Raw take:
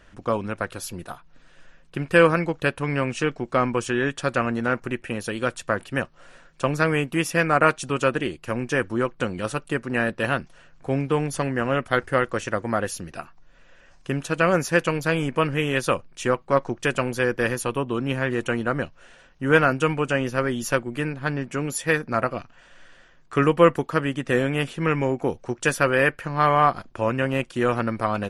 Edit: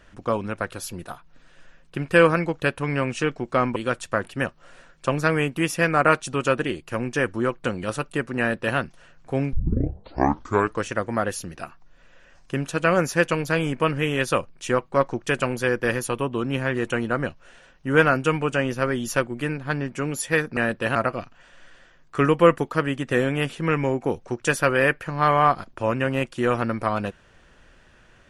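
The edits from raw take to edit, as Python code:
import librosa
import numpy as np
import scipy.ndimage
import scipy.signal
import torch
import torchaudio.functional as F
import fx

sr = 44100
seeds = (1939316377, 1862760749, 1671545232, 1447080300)

y = fx.edit(x, sr, fx.cut(start_s=3.76, length_s=1.56),
    fx.duplicate(start_s=9.95, length_s=0.38, to_s=22.13),
    fx.tape_start(start_s=11.09, length_s=1.33), tone=tone)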